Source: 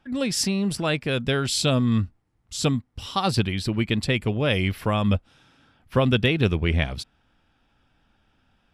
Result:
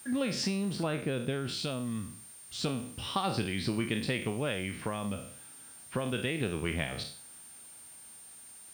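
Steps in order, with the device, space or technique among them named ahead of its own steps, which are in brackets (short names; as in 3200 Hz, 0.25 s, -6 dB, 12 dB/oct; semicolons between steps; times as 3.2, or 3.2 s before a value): spectral trails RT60 0.41 s; medium wave at night (BPF 130–3700 Hz; compressor 5:1, threshold -28 dBFS, peak gain reduction 12 dB; tremolo 0.28 Hz, depth 42%; whine 9000 Hz -49 dBFS; white noise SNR 23 dB); 0.83–1.49 tilt shelf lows +4 dB, about 720 Hz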